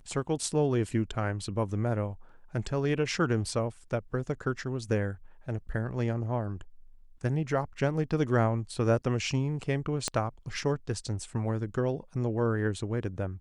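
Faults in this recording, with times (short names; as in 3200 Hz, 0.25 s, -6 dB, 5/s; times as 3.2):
10.08 pop -15 dBFS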